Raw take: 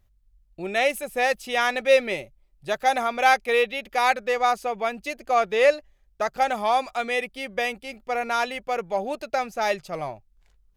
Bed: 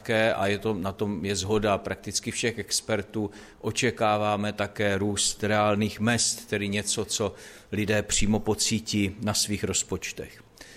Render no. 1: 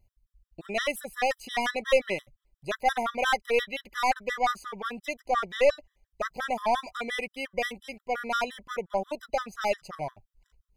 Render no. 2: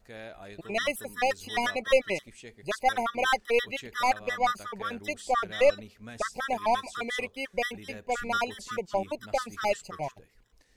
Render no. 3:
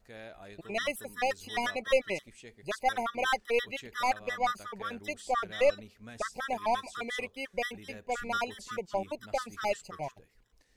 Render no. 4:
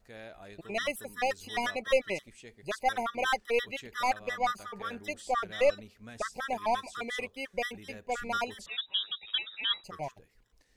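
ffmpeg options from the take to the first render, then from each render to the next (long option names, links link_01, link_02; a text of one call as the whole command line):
ffmpeg -i in.wav -af "aeval=exprs='(tanh(3.98*val(0)+0.4)-tanh(0.4))/3.98':channel_layout=same,afftfilt=real='re*gt(sin(2*PI*5.7*pts/sr)*(1-2*mod(floor(b*sr/1024/1000),2)),0)':imag='im*gt(sin(2*PI*5.7*pts/sr)*(1-2*mod(floor(b*sr/1024/1000),2)),0)':win_size=1024:overlap=0.75" out.wav
ffmpeg -i in.wav -i bed.wav -filter_complex "[1:a]volume=-20.5dB[link_01];[0:a][link_01]amix=inputs=2:normalize=0" out.wav
ffmpeg -i in.wav -af "volume=-3.5dB" out.wav
ffmpeg -i in.wav -filter_complex "[0:a]asplit=3[link_01][link_02][link_03];[link_01]afade=type=out:start_time=4.58:duration=0.02[link_04];[link_02]bandreject=frequency=109.6:width_type=h:width=4,bandreject=frequency=219.2:width_type=h:width=4,bandreject=frequency=328.8:width_type=h:width=4,bandreject=frequency=438.4:width_type=h:width=4,bandreject=frequency=548:width_type=h:width=4,bandreject=frequency=657.6:width_type=h:width=4,bandreject=frequency=767.2:width_type=h:width=4,bandreject=frequency=876.8:width_type=h:width=4,bandreject=frequency=986.4:width_type=h:width=4,bandreject=frequency=1096:width_type=h:width=4,bandreject=frequency=1205.6:width_type=h:width=4,bandreject=frequency=1315.2:width_type=h:width=4,bandreject=frequency=1424.8:width_type=h:width=4,bandreject=frequency=1534.4:width_type=h:width=4,bandreject=frequency=1644:width_type=h:width=4,bandreject=frequency=1753.6:width_type=h:width=4,bandreject=frequency=1863.2:width_type=h:width=4,afade=type=in:start_time=4.58:duration=0.02,afade=type=out:start_time=5.22:duration=0.02[link_05];[link_03]afade=type=in:start_time=5.22:duration=0.02[link_06];[link_04][link_05][link_06]amix=inputs=3:normalize=0,asettb=1/sr,asplit=3[link_07][link_08][link_09];[link_07]atrim=end=8.664[link_10];[link_08]atrim=start=8.66:end=9.84,asetpts=PTS-STARTPTS,afade=type=in:duration=0.004:curve=qsin,afade=type=out:start_time=1.176:duration=0.004:curve=qsin,lowpass=frequency=3300:width_type=q:width=0.5098,lowpass=frequency=3300:width_type=q:width=0.6013,lowpass=frequency=3300:width_type=q:width=0.9,lowpass=frequency=3300:width_type=q:width=2.563,afreqshift=-3900[link_11];[link_09]atrim=start=9.836[link_12];[link_10][link_11]acrossfade=duration=0.004:curve1=hsin:curve2=qsin[link_13];[link_13][link_12]acrossfade=duration=0.004:curve1=qsin:curve2=hsin" out.wav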